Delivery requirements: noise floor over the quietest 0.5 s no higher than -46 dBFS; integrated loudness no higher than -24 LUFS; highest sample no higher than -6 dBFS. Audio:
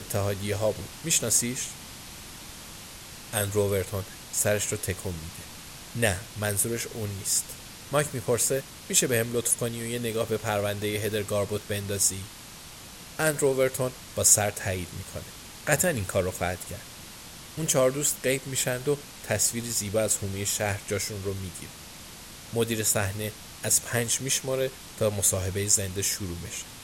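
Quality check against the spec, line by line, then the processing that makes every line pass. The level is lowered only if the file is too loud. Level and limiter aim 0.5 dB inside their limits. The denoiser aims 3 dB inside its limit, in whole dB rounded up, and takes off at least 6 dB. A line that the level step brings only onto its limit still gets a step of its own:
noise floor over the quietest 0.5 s -45 dBFS: fail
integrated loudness -26.5 LUFS: OK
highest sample -5.0 dBFS: fail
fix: denoiser 6 dB, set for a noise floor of -45 dBFS; limiter -6.5 dBFS

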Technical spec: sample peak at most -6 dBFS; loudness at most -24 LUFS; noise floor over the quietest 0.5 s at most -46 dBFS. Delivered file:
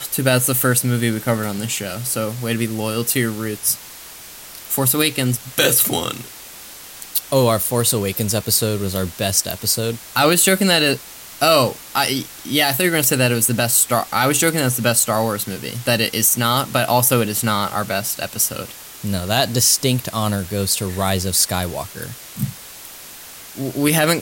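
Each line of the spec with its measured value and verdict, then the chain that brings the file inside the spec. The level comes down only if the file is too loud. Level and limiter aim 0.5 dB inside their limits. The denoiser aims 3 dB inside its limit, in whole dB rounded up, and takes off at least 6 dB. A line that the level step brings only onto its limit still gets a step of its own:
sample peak -3.5 dBFS: fail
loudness -18.0 LUFS: fail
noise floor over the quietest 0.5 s -38 dBFS: fail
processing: denoiser 6 dB, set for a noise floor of -38 dBFS; gain -6.5 dB

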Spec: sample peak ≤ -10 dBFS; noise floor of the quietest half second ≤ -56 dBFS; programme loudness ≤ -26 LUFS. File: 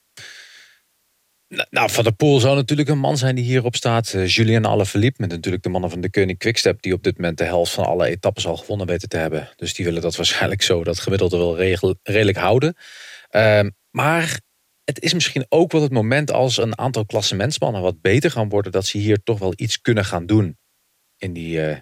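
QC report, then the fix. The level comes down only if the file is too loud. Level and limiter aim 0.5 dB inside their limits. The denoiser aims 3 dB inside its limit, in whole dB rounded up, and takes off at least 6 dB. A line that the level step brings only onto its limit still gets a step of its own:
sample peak -5.0 dBFS: fail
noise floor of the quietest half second -66 dBFS: OK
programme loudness -19.0 LUFS: fail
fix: gain -7.5 dB

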